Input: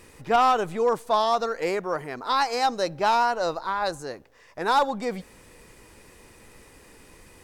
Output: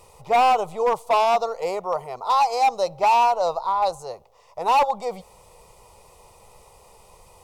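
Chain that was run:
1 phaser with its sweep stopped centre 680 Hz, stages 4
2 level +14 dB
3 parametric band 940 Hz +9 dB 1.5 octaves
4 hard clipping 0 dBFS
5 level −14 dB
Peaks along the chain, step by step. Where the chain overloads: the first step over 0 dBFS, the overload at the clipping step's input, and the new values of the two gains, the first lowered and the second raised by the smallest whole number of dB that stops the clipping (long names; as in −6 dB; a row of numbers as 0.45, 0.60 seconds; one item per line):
−11.0, +3.0, +9.5, 0.0, −14.0 dBFS
step 2, 9.5 dB
step 2 +4 dB, step 5 −4 dB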